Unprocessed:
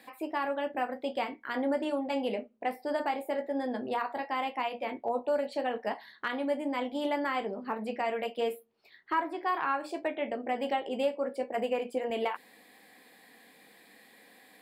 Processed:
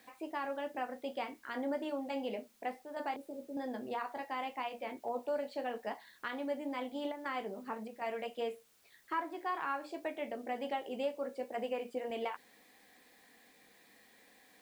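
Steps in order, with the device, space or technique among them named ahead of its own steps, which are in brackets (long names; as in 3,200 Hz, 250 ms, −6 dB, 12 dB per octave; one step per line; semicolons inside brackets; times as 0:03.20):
0:03.16–0:03.57: Chebyshev band-stop filter 360–9,400 Hz, order 2
worn cassette (low-pass filter 7,900 Hz; tape wow and flutter 21 cents; tape dropouts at 0:02.83/0:07.12/0:07.88, 132 ms −8 dB; white noise bed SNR 29 dB)
level −6.5 dB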